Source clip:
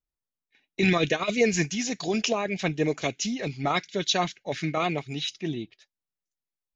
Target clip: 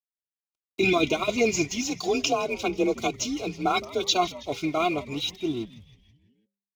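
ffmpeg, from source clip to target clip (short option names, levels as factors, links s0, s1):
-filter_complex "[0:a]lowshelf=f=86:g=8,aeval=exprs='sgn(val(0))*max(abs(val(0))-0.00447,0)':c=same,asuperstop=centerf=1800:order=8:qfactor=2.7,aecho=1:1:2.9:0.68,asplit=6[s0][s1][s2][s3][s4][s5];[s1]adelay=162,afreqshift=-110,volume=0.126[s6];[s2]adelay=324,afreqshift=-220,volume=0.0708[s7];[s3]adelay=486,afreqshift=-330,volume=0.0394[s8];[s4]adelay=648,afreqshift=-440,volume=0.0221[s9];[s5]adelay=810,afreqshift=-550,volume=0.0124[s10];[s0][s6][s7][s8][s9][s10]amix=inputs=6:normalize=0,asplit=3[s11][s12][s13];[s11]afade=t=out:st=1.81:d=0.02[s14];[s12]afreqshift=35,afade=t=in:st=1.81:d=0.02,afade=t=out:st=4.14:d=0.02[s15];[s13]afade=t=in:st=4.14:d=0.02[s16];[s14][s15][s16]amix=inputs=3:normalize=0,highpass=44,bandreject=f=199.9:t=h:w=4,bandreject=f=399.8:t=h:w=4"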